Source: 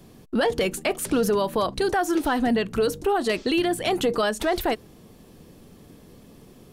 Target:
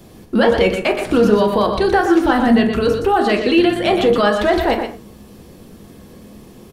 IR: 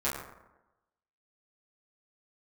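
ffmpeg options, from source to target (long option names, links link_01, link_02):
-filter_complex "[0:a]acrossover=split=4700[link_01][link_02];[link_02]acompressor=threshold=-50dB:ratio=4:attack=1:release=60[link_03];[link_01][link_03]amix=inputs=2:normalize=0,aecho=1:1:121:0.422,asplit=2[link_04][link_05];[1:a]atrim=start_sample=2205,afade=type=out:start_time=0.17:duration=0.01,atrim=end_sample=7938[link_06];[link_05][link_06]afir=irnorm=-1:irlink=0,volume=-8.5dB[link_07];[link_04][link_07]amix=inputs=2:normalize=0,volume=4dB"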